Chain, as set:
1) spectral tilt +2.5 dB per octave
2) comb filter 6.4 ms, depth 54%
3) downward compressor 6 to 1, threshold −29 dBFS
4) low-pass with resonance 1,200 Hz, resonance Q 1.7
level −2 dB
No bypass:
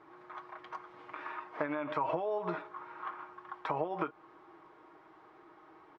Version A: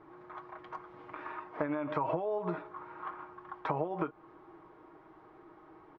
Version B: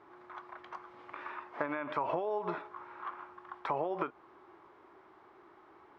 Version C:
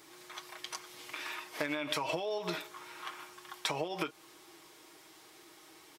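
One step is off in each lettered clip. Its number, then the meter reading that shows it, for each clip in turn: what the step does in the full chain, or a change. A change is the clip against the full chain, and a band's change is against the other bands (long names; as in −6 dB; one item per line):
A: 1, 125 Hz band +6.0 dB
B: 2, 125 Hz band −2.5 dB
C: 4, 4 kHz band +18.5 dB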